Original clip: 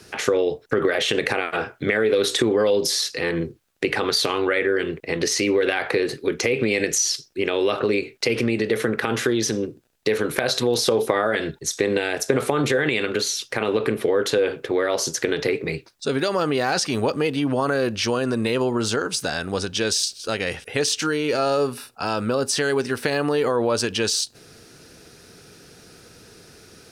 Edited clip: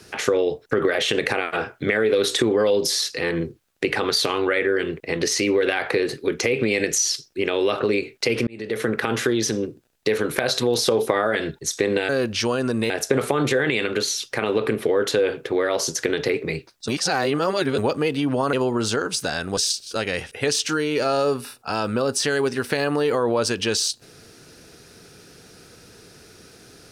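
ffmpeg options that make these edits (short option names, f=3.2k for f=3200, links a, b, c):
-filter_complex "[0:a]asplit=8[a][b][c][d][e][f][g][h];[a]atrim=end=8.47,asetpts=PTS-STARTPTS,afade=t=out:st=8.466:d=0.004:c=hsin[i];[b]atrim=start=8.47:end=12.092,asetpts=PTS-STARTPTS,afade=t=in:d=0.42[j];[c]atrim=start=17.718:end=18.532[k];[d]atrim=start=12.088:end=16.072[l];[e]atrim=start=16.068:end=16.972,asetpts=PTS-STARTPTS,areverse[m];[f]atrim=start=16.968:end=17.722[n];[g]atrim=start=18.528:end=19.572[o];[h]atrim=start=19.898[p];[i][j]concat=n=2:v=0:a=1[q];[q][k]acrossfade=d=0.004:c1=hsin:c2=hsin[r];[r][l]acrossfade=d=0.004:c1=hsin:c2=hsin[s];[s][m]acrossfade=d=0.004:c1=hsin:c2=hsin[t];[t][n]acrossfade=d=0.004:c1=hsin:c2=hsin[u];[u][o]acrossfade=d=0.004:c1=hsin:c2=hsin[v];[v][p]acrossfade=d=0.004:c1=hsin:c2=hsin"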